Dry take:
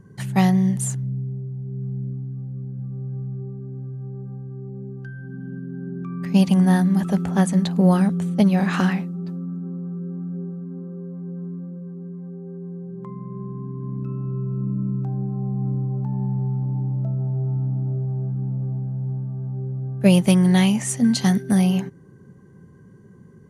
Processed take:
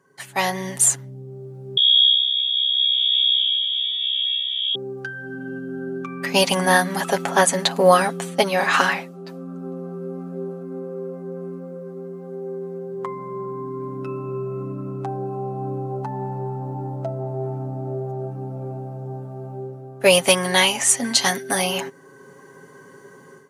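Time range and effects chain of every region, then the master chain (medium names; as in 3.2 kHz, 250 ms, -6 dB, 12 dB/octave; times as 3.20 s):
1.77–4.75 s: frequency inversion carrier 3.5 kHz + three bands expanded up and down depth 70%
whole clip: high-pass 610 Hz 12 dB/octave; comb 7.3 ms, depth 63%; level rider gain up to 16.5 dB; trim -1 dB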